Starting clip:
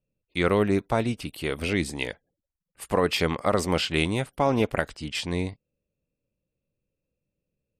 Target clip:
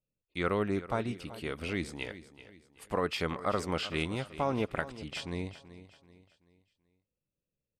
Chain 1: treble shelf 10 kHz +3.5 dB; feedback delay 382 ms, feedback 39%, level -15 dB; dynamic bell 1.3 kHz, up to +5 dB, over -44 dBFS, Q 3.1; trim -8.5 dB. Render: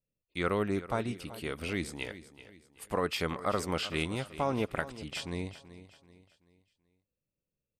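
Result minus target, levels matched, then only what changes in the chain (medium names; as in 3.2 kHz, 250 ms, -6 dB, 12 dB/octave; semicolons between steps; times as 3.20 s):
8 kHz band +4.0 dB
change: treble shelf 10 kHz -8.5 dB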